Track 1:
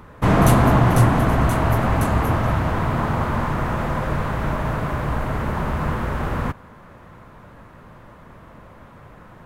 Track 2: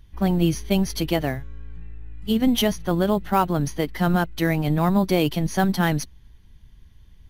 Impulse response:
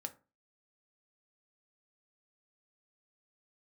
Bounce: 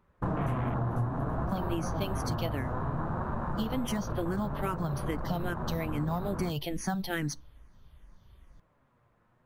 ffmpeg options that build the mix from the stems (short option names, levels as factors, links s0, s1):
-filter_complex "[0:a]flanger=delay=5.2:depth=3.5:regen=55:speed=0.6:shape=sinusoidal,afwtdn=0.0447,volume=0.631[s0];[1:a]asplit=2[s1][s2];[s2]afreqshift=-2.4[s3];[s1][s3]amix=inputs=2:normalize=1,adelay=1300,volume=0.562,asplit=2[s4][s5];[s5]volume=0.376[s6];[2:a]atrim=start_sample=2205[s7];[s6][s7]afir=irnorm=-1:irlink=0[s8];[s0][s4][s8]amix=inputs=3:normalize=0,acompressor=threshold=0.0398:ratio=5"